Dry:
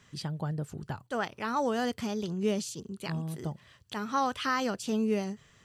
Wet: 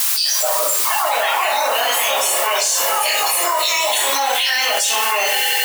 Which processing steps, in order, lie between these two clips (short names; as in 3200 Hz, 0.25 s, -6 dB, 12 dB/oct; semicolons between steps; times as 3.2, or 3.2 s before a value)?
Butterworth band-stop 1200 Hz, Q 0.96; on a send: swelling echo 91 ms, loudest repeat 8, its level -18 dB; on the sum: echoes that change speed 0.142 s, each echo +4 st, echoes 3, each echo -6 dB; sample leveller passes 2; spectral noise reduction 17 dB; shoebox room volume 62 m³, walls mixed, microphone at 2.7 m; added noise white -41 dBFS; HPF 820 Hz 24 dB/oct; high shelf 4600 Hz +8 dB; fast leveller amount 100%; gain -2 dB